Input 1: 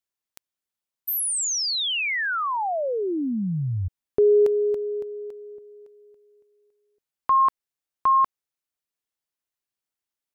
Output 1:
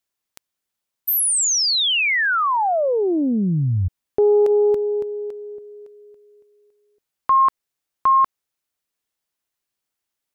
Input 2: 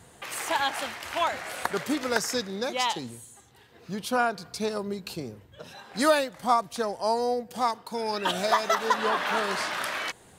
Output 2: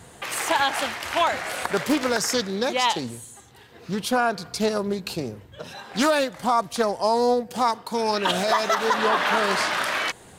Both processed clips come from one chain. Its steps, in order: limiter -17.5 dBFS; Doppler distortion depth 0.26 ms; gain +6.5 dB

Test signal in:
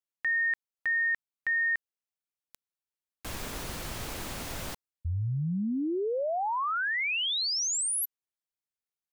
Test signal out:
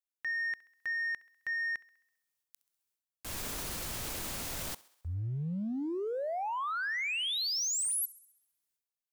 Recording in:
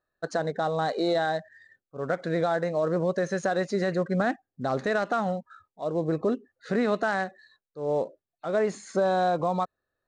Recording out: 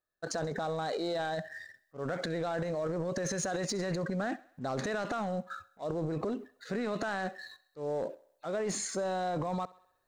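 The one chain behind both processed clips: high shelf 4600 Hz +8 dB; transient shaper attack -3 dB, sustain +12 dB; sample leveller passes 1; compressor, threshold -23 dBFS; thinning echo 66 ms, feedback 57%, high-pass 310 Hz, level -20.5 dB; gain -7.5 dB

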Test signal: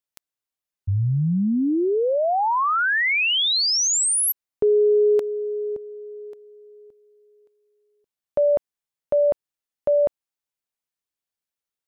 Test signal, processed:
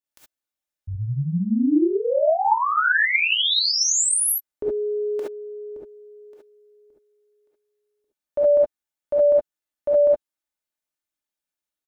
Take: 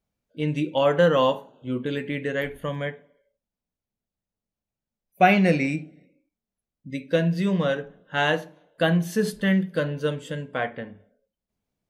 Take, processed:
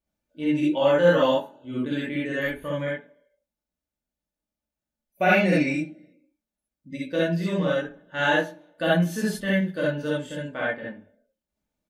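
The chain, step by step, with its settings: comb 3.4 ms, depth 40%; non-linear reverb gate 90 ms rising, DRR -6 dB; gain -7 dB

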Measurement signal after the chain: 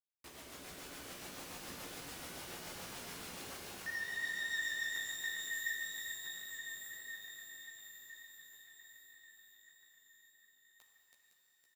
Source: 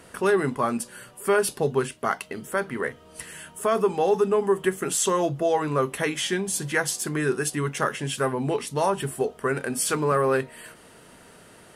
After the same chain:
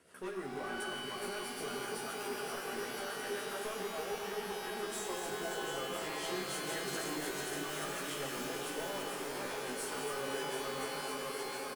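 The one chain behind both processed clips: regenerating reverse delay 0.255 s, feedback 84%, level -5 dB; HPF 250 Hz 6 dB/oct; compressor, threshold -24 dBFS; rotary speaker horn 7 Hz; hard clip -26.5 dBFS; on a send: echo 1.195 s -13.5 dB; on the sum: chorus voices 6, 1.2 Hz, delay 14 ms, depth 3 ms; shimmer reverb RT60 2.8 s, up +12 st, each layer -2 dB, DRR 3 dB; gain -8 dB

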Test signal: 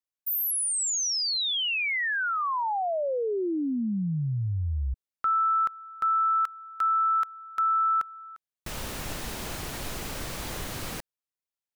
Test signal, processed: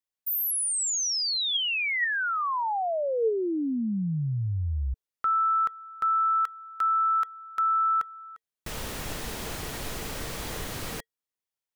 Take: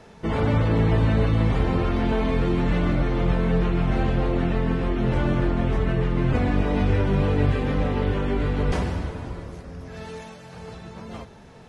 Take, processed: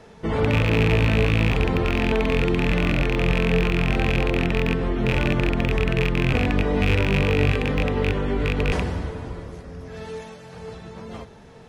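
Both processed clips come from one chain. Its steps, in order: rattling part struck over -19 dBFS, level -12 dBFS; small resonant body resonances 450/1900/3300 Hz, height 6 dB, ringing for 85 ms

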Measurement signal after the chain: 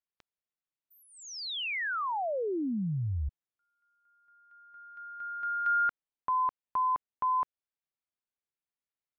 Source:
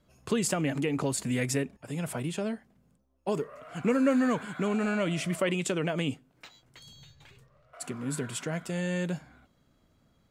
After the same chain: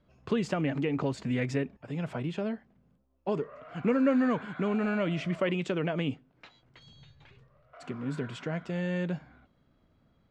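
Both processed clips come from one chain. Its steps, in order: air absorption 200 m

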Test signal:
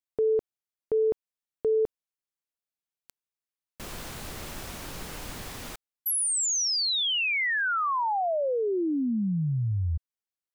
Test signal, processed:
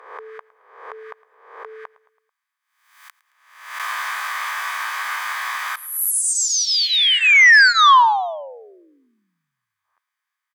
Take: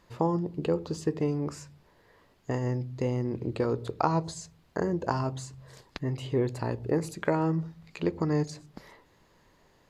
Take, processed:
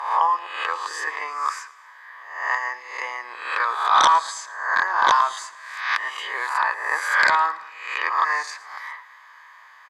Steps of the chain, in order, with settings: spectral swells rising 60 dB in 0.72 s; ladder high-pass 990 Hz, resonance 55%; bell 1600 Hz +14 dB 1.7 oct; in parallel at -5 dB: sine folder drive 13 dB, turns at -5 dBFS; on the sum: notch comb 1400 Hz; on a send: feedback echo 0.11 s, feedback 53%, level -20.5 dB

